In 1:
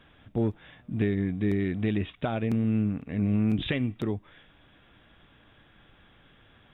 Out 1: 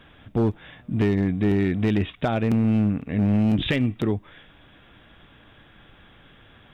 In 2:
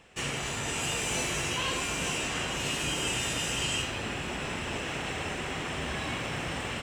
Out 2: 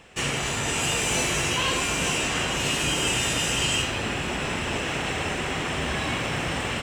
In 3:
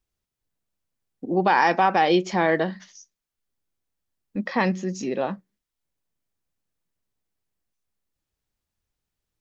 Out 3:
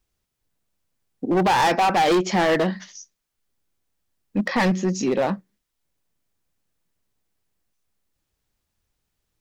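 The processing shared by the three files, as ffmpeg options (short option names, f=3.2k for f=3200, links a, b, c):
-af "acontrast=58,asoftclip=type=hard:threshold=-15.5dB"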